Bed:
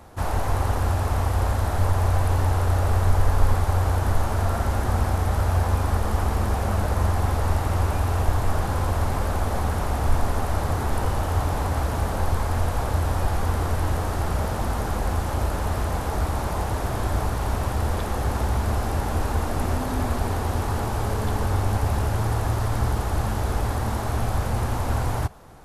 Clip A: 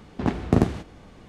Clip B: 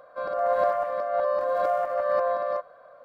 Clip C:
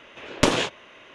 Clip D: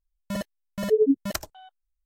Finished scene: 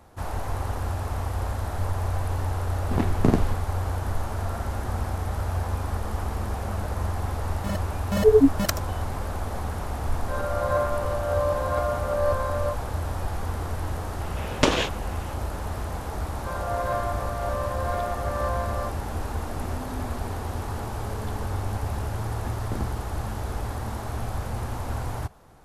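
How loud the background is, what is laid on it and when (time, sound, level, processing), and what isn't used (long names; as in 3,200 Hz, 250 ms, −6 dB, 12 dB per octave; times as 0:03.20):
bed −6 dB
0:02.72: mix in A −1.5 dB
0:07.34: mix in D −5 dB + automatic gain control
0:10.13: mix in B −1.5 dB + comb filter 6.5 ms, depth 74%
0:14.20: mix in C −1 dB + low-pass filter 8,300 Hz
0:16.29: mix in B −0.5 dB + high-pass filter 760 Hz
0:22.19: mix in A −15.5 dB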